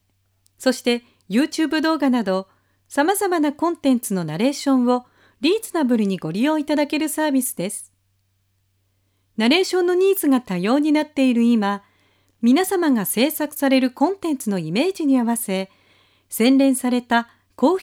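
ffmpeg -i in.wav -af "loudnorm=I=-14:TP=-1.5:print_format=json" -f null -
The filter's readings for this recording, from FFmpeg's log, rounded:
"input_i" : "-19.8",
"input_tp" : "-3.7",
"input_lra" : "3.4",
"input_thresh" : "-30.6",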